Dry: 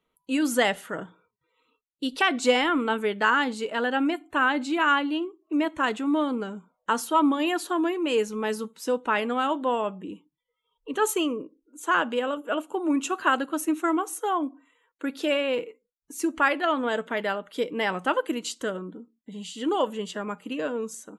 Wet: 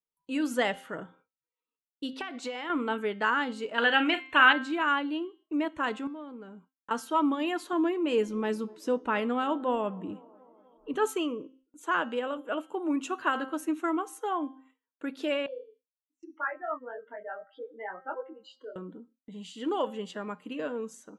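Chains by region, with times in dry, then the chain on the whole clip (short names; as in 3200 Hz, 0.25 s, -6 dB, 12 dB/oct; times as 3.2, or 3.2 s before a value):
2.13–2.7 HPF 400 Hz 6 dB/oct + high shelf 7900 Hz -7.5 dB + compressor 12:1, threshold -26 dBFS
3.78–4.53 bell 2700 Hz +15 dB 2.2 oct + doubler 38 ms -9.5 dB
6.07–6.91 expander -49 dBFS + high shelf 3800 Hz -8.5 dB + compressor 2:1, threshold -44 dBFS
7.73–11.07 low shelf 240 Hz +9.5 dB + band-limited delay 0.247 s, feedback 65%, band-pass 550 Hz, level -23 dB
15.46–18.76 spectral contrast raised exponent 2.7 + BPF 550–2700 Hz + detuned doubles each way 50 cents
whole clip: de-hum 263.4 Hz, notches 25; gate with hold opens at -47 dBFS; high shelf 6000 Hz -9.5 dB; gain -4.5 dB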